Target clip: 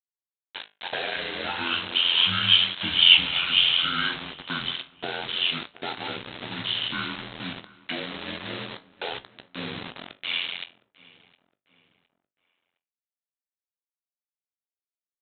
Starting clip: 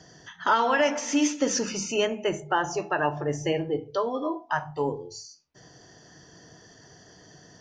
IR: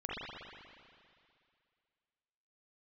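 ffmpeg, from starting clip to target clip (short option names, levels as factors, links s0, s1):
-filter_complex "[0:a]aeval=exprs='val(0)*sin(2*PI*87*n/s)':c=same,highshelf=f=2700:g=9,acrossover=split=280|3000[s0][s1][s2];[s1]acompressor=threshold=0.0224:ratio=8[s3];[s0][s3][s2]amix=inputs=3:normalize=0,aresample=16000,acrusher=bits=5:mix=0:aa=0.000001,aresample=44100,flanger=delay=7.9:depth=4:regen=-60:speed=0.64:shape=sinusoidal,aemphasis=mode=production:type=riaa,asplit=2[s4][s5];[s5]adelay=356,lowpass=f=3900:p=1,volume=0.0891,asplit=2[s6][s7];[s7]adelay=356,lowpass=f=3900:p=1,volume=0.48,asplit=2[s8][s9];[s9]adelay=356,lowpass=f=3900:p=1,volume=0.48[s10];[s4][s6][s8][s10]amix=inputs=4:normalize=0,asetrate=22050,aresample=44100,volume=1.41"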